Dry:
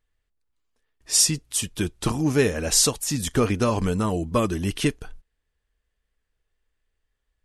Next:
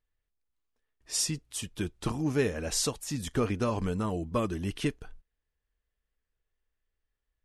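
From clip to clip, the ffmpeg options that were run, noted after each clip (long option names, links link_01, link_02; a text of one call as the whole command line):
ffmpeg -i in.wav -af "highshelf=frequency=4900:gain=-6.5,volume=-7dB" out.wav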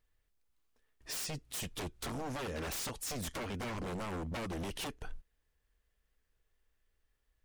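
ffmpeg -i in.wav -af "acompressor=threshold=-36dB:ratio=6,aeval=exprs='0.0106*(abs(mod(val(0)/0.0106+3,4)-2)-1)':channel_layout=same,volume=5.5dB" out.wav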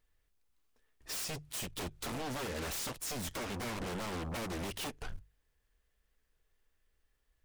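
ffmpeg -i in.wav -af "aeval=exprs='0.0211*(cos(1*acos(clip(val(0)/0.0211,-1,1)))-cos(1*PI/2))+0.00668*(cos(7*acos(clip(val(0)/0.0211,-1,1)))-cos(7*PI/2))':channel_layout=same,bandreject=frequency=50:width_type=h:width=6,bandreject=frequency=100:width_type=h:width=6,bandreject=frequency=150:width_type=h:width=6" out.wav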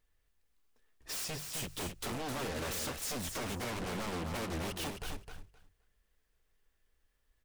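ffmpeg -i in.wav -af "aecho=1:1:261|522|783:0.501|0.0852|0.0145" out.wav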